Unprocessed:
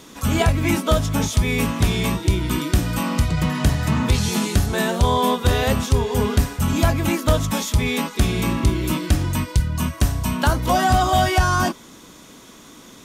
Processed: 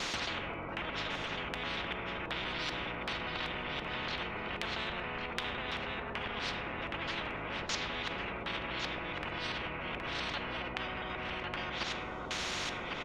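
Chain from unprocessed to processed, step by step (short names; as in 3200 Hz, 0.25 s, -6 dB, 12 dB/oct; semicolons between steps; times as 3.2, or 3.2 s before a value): local time reversal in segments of 0.136 s; treble ducked by the level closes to 620 Hz, closed at -13.5 dBFS; low shelf 360 Hz -9.5 dB; notch 1700 Hz, Q 6.9; in parallel at +1.5 dB: negative-ratio compressor -31 dBFS; on the sum: LFO low-pass square 1.3 Hz 490–2300 Hz; limiter -16.5 dBFS, peak gain reduction 9.5 dB; echo 1.102 s -13.5 dB; on a send at -7 dB: reverb RT60 0.90 s, pre-delay 6 ms; on the sum: spectral compressor 10:1; gain -4 dB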